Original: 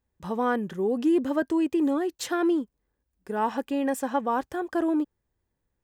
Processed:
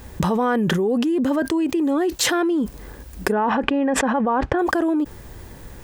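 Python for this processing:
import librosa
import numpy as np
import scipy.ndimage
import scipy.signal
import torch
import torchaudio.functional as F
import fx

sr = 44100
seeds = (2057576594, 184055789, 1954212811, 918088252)

y = fx.lowpass(x, sr, hz=2100.0, slope=12, at=(3.31, 4.58), fade=0.02)
y = fx.env_flatten(y, sr, amount_pct=100)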